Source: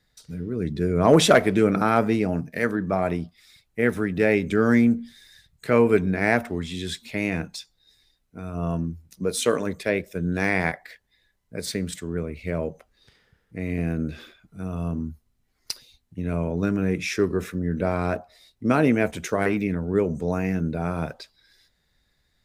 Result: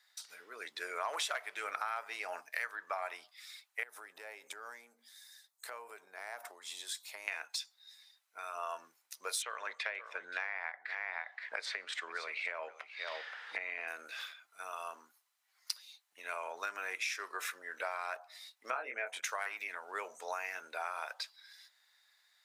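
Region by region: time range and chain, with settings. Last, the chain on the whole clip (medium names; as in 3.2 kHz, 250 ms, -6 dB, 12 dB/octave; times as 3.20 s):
3.83–7.28 s: compression 8:1, threshold -28 dBFS + peaking EQ 2.3 kHz -13 dB 2.1 oct
9.42–13.88 s: low-pass 2.7 kHz + delay 524 ms -18.5 dB + three bands compressed up and down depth 100%
18.70–19.23 s: resonances exaggerated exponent 1.5 + doubling 23 ms -3.5 dB
whole clip: high-pass 860 Hz 24 dB/octave; compression 8:1, threshold -37 dBFS; trim +2.5 dB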